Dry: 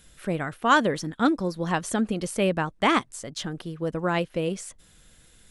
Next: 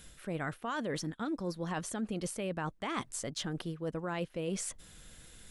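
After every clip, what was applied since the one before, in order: limiter -18 dBFS, peak gain reduction 10.5 dB; reverse; compressor 6:1, threshold -35 dBFS, peak gain reduction 12.5 dB; reverse; gain +1.5 dB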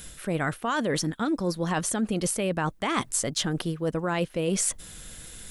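high shelf 8100 Hz +7.5 dB; gain +9 dB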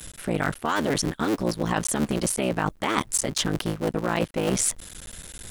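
cycle switcher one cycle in 3, muted; gain +3.5 dB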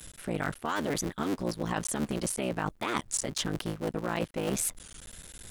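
record warp 33 1/3 rpm, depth 160 cents; gain -6.5 dB

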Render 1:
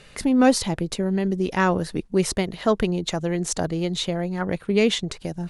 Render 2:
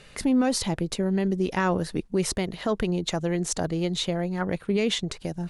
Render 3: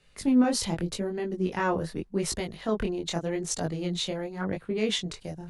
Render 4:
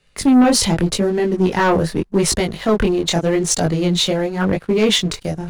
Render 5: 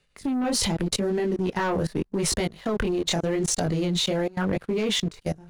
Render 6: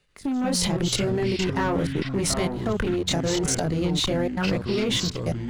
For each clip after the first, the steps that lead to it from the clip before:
limiter -13.5 dBFS, peak gain reduction 7.5 dB; gain -1.5 dB
chorus 0.84 Hz, delay 18 ms, depth 7.6 ms; three-band expander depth 40%
sample leveller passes 2; gain +6.5 dB
level quantiser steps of 22 dB; gain -2.5 dB
echoes that change speed 83 ms, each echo -6 st, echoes 3, each echo -6 dB

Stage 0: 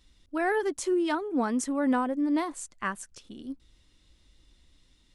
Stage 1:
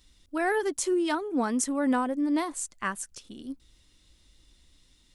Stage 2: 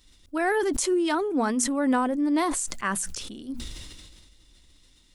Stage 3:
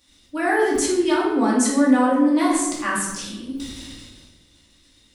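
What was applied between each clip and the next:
high shelf 5000 Hz +8 dB
notches 60/120/180/240 Hz; sustainer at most 30 dB/s; gain +2 dB
HPF 160 Hz 6 dB/oct; shoebox room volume 360 m³, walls mixed, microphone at 2.4 m; gain -1.5 dB

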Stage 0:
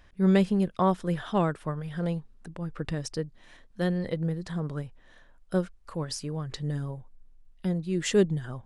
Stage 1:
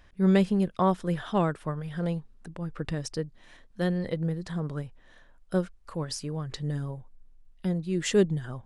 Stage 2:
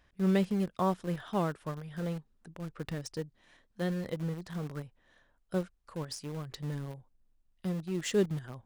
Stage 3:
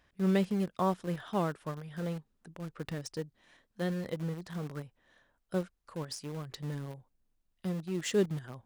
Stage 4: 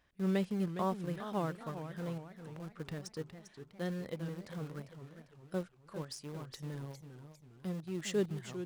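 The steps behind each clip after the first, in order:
nothing audible
HPF 44 Hz 6 dB/oct; in parallel at -11 dB: bit-crush 5-bit; on the sum: gain -7.5 dB
low shelf 62 Hz -8 dB
warbling echo 0.405 s, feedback 46%, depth 216 cents, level -10 dB; gain -4.5 dB

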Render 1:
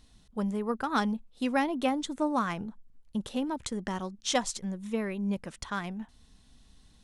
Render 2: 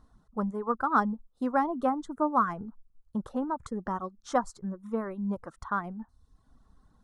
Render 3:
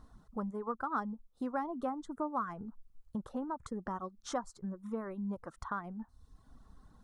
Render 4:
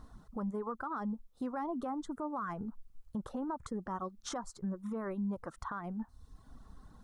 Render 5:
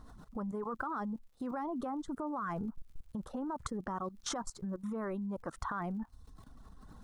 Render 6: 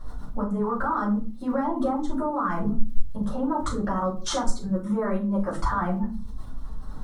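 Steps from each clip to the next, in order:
reverb removal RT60 0.75 s; resonant high shelf 1800 Hz -12.5 dB, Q 3
compressor 2:1, threshold -46 dBFS, peak gain reduction 15 dB; gain +3 dB
limiter -34 dBFS, peak gain reduction 11.5 dB; gain +4 dB
crackle 100/s -61 dBFS; level quantiser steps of 15 dB; gain +8 dB
shoebox room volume 200 m³, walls furnished, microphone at 5.5 m

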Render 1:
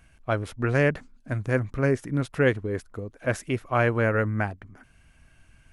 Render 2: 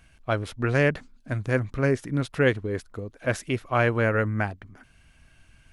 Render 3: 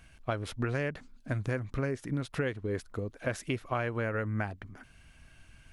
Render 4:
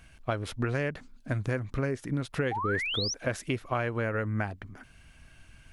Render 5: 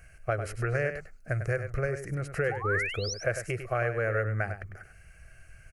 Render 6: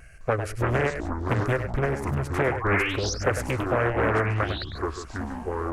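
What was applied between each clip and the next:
bell 3900 Hz +5 dB 1.1 oct
compressor 10:1, threshold -28 dBFS, peak gain reduction 13 dB
painted sound rise, 2.51–3.14, 740–6200 Hz -34 dBFS; gain +2 dB
fixed phaser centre 960 Hz, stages 6; echo 0.1 s -9.5 dB; gain +3 dB
vibrato 0.79 Hz 12 cents; echoes that change speed 0.208 s, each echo -6 st, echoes 2, each echo -6 dB; Doppler distortion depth 0.84 ms; gain +4.5 dB

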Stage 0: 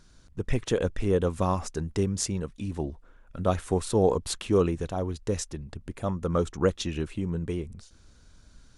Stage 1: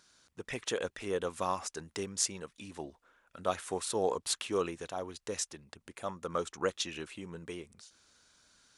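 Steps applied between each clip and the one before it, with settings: HPF 1100 Hz 6 dB/oct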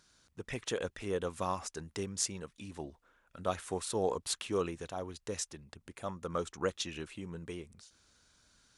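low shelf 170 Hz +10 dB; gain -2.5 dB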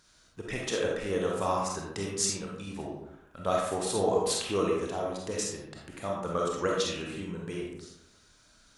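digital reverb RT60 0.88 s, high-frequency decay 0.5×, pre-delay 5 ms, DRR -2.5 dB; gain +2.5 dB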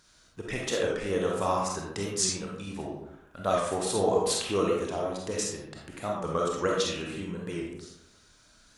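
record warp 45 rpm, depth 100 cents; gain +1.5 dB

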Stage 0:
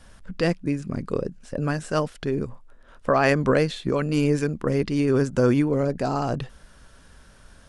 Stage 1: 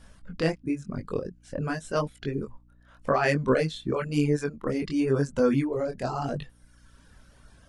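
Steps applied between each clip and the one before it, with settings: chorus 0.93 Hz, delay 20 ms, depth 5.4 ms; reverb removal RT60 1 s; hum 60 Hz, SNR 30 dB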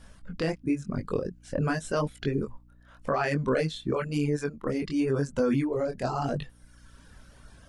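vocal rider within 4 dB 2 s; limiter -17 dBFS, peak gain reduction 9.5 dB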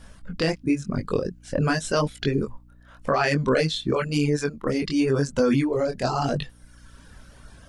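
dynamic EQ 4600 Hz, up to +7 dB, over -52 dBFS, Q 0.77; gain +4.5 dB

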